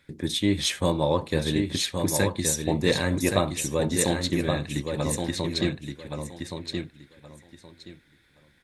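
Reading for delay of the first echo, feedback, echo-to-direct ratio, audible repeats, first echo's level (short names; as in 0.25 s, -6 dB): 1.122 s, 21%, -5.5 dB, 3, -5.5 dB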